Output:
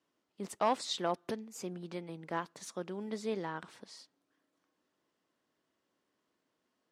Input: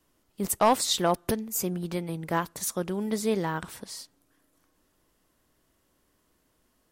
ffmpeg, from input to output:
-af "highpass=200,lowpass=5400,volume=0.376"

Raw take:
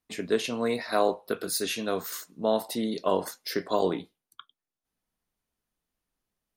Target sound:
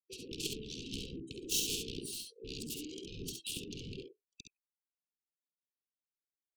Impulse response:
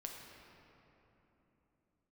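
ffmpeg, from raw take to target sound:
-filter_complex "[0:a]afftfilt=real='real(if(between(b,1,1008),(2*floor((b-1)/48)+1)*48-b,b),0)':imag='imag(if(between(b,1,1008),(2*floor((b-1)/48)+1)*48-b,b),0)*if(between(b,1,1008),-1,1)':win_size=2048:overlap=0.75,afftdn=nr=28:nf=-44,equalizer=f=250:t=o:w=1:g=7,equalizer=f=500:t=o:w=1:g=9,equalizer=f=4000:t=o:w=1:g=4,equalizer=f=8000:t=o:w=1:g=5,afftfilt=real='re*lt(hypot(re,im),0.2)':imag='im*lt(hypot(re,im),0.2)':win_size=1024:overlap=0.75,equalizer=f=110:t=o:w=0.32:g=-12.5,asetrate=27781,aresample=44100,atempo=1.5874,aeval=exprs='0.188*(cos(1*acos(clip(val(0)/0.188,-1,1)))-cos(1*PI/2))+0.015*(cos(5*acos(clip(val(0)/0.188,-1,1)))-cos(5*PI/2))+0.0531*(cos(7*acos(clip(val(0)/0.188,-1,1)))-cos(7*PI/2))':c=same,acrossover=split=400[s0][s1];[s1]asoftclip=type=tanh:threshold=0.0447[s2];[s0][s2]amix=inputs=2:normalize=0,asuperstop=centerf=1100:order=20:qfactor=0.5,aecho=1:1:52|67:0.237|0.562,volume=1.19"

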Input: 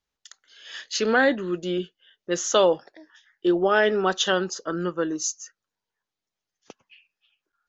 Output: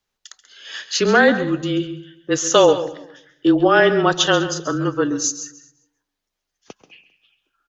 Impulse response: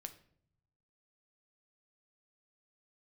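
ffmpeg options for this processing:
-filter_complex "[0:a]afreqshift=-26,aecho=1:1:199|398:0.0891|0.0241,asplit=2[s0][s1];[1:a]atrim=start_sample=2205,adelay=135[s2];[s1][s2]afir=irnorm=-1:irlink=0,volume=0.398[s3];[s0][s3]amix=inputs=2:normalize=0,volume=2"

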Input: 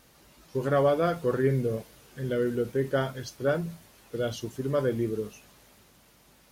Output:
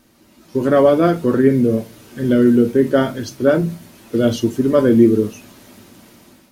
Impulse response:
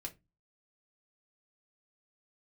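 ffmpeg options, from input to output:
-filter_complex "[0:a]equalizer=f=260:w=1.6:g=10.5,dynaudnorm=f=190:g=5:m=3.35,asplit=2[s0][s1];[1:a]atrim=start_sample=2205[s2];[s1][s2]afir=irnorm=-1:irlink=0,volume=1.33[s3];[s0][s3]amix=inputs=2:normalize=0,volume=0.631"

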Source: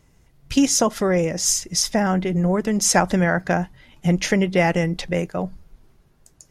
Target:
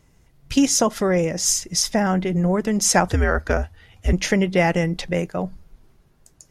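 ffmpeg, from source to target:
-filter_complex "[0:a]asettb=1/sr,asplit=3[s0][s1][s2];[s0]atrim=end=3.084[s3];[s1]atrim=start=3.08:end=4.13,asetpts=PTS-STARTPTS,afade=t=in:d=0.004:c=qsin,afade=t=out:st=1.046:d=0.004:c=qsin,afreqshift=-110[s4];[s2]atrim=start=4.126[s5];[s3][s4]acrossfade=d=0.004:c1=hsin:c2=qsin[s6];[s6][s5]acrossfade=d=0.004:c1=qsin:c2=hsin"

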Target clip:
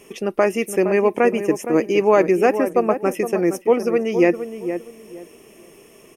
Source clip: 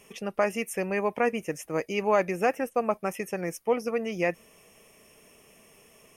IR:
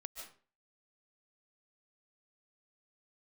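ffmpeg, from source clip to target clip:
-filter_complex "[0:a]equalizer=f=340:w=2.3:g=12.5,asplit=2[s0][s1];[s1]adelay=465,lowpass=f=1300:p=1,volume=0.355,asplit=2[s2][s3];[s3]adelay=465,lowpass=f=1300:p=1,volume=0.25,asplit=2[s4][s5];[s5]adelay=465,lowpass=f=1300:p=1,volume=0.25[s6];[s2][s4][s6]amix=inputs=3:normalize=0[s7];[s0][s7]amix=inputs=2:normalize=0,volume=1.88"

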